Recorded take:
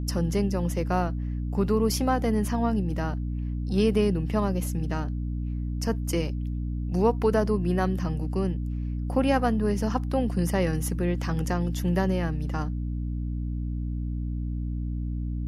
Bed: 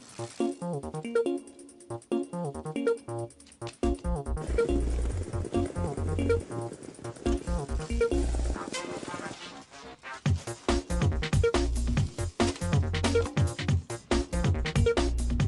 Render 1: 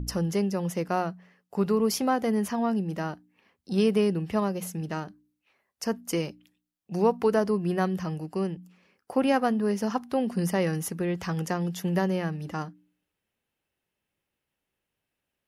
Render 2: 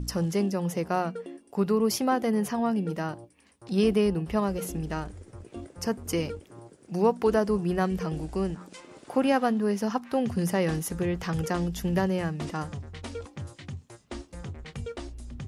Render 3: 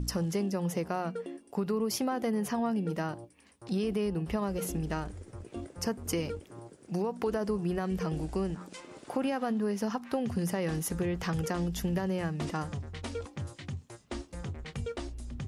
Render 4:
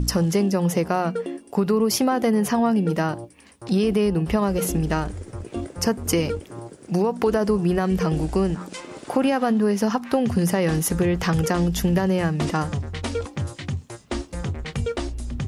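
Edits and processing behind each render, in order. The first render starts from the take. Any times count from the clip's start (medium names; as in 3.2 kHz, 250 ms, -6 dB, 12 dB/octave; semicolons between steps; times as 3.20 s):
de-hum 60 Hz, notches 5
add bed -12 dB
peak limiter -17 dBFS, peak gain reduction 7 dB; compression, threshold -27 dBFS, peak gain reduction 7 dB
trim +10.5 dB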